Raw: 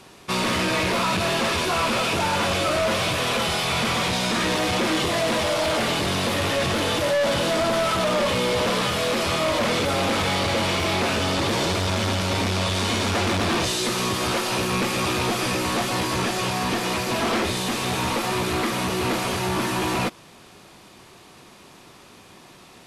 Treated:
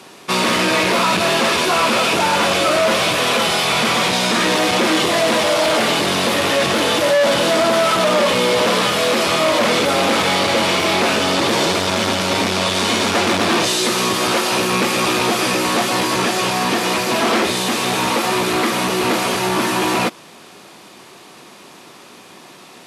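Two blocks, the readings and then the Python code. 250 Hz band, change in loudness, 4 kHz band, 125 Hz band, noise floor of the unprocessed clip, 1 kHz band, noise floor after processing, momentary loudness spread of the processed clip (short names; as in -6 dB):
+5.5 dB, +6.5 dB, +7.0 dB, -0.5 dB, -48 dBFS, +7.0 dB, -42 dBFS, 3 LU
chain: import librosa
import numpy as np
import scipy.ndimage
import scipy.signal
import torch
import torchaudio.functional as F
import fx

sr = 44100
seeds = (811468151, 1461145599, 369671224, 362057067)

y = scipy.signal.sosfilt(scipy.signal.butter(2, 190.0, 'highpass', fs=sr, output='sos'), x)
y = y * librosa.db_to_amplitude(7.0)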